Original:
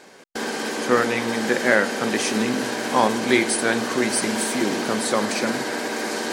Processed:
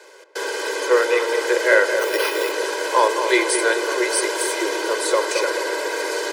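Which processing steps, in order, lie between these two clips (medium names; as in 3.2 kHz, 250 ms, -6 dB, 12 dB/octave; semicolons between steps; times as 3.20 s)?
1.99–2.52 s: careless resampling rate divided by 6×, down none, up hold; steep high-pass 310 Hz 72 dB/octave; comb 2 ms, depth 86%; tape echo 217 ms, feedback 65%, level -6 dB, low-pass 1.4 kHz; trim -1 dB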